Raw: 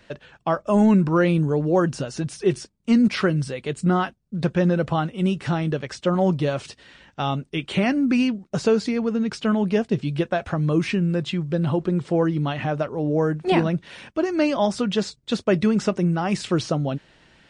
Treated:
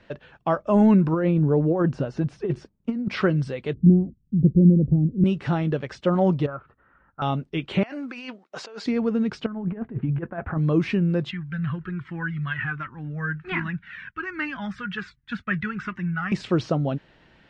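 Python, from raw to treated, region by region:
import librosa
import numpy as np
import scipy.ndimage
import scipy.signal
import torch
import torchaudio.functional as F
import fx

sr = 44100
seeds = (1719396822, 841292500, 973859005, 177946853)

y = fx.chain(x, sr, fx.high_shelf(hz=2200.0, db=-11.0),
    fx.over_compress(threshold_db=-20.0, ratio=-0.5), at=(1.13, 3.1))
y = fx.chain(y, sr, fx.cheby2_lowpass(hz=1600.0, order=4, stop_db=70),
    fx.low_shelf(hz=270.0, db=9.0), at=(3.74, 5.24))
y = fx.chain(y, sr, fx.ladder_lowpass(hz=1400.0, resonance_pct=80),
    fx.low_shelf(hz=76.0, db=11.5), at=(6.46, 7.22))
y = fx.chain(y, sr, fx.highpass(hz=690.0, slope=12),
    fx.over_compress(threshold_db=-35.0, ratio=-1.0), at=(7.83, 8.86))
y = fx.chain(y, sr, fx.lowpass(hz=1800.0, slope=24),
    fx.over_compress(threshold_db=-25.0, ratio=-0.5),
    fx.peak_eq(hz=560.0, db=-7.0, octaves=0.83), at=(9.46, 10.58))
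y = fx.chain(y, sr, fx.curve_eq(hz=(190.0, 600.0, 1600.0, 4500.0), db=(0, -21, 14, -7)),
    fx.comb_cascade(direction='falling', hz=1.3), at=(11.31, 16.32))
y = scipy.signal.sosfilt(scipy.signal.butter(2, 5400.0, 'lowpass', fs=sr, output='sos'), y)
y = fx.high_shelf(y, sr, hz=3300.0, db=-8.5)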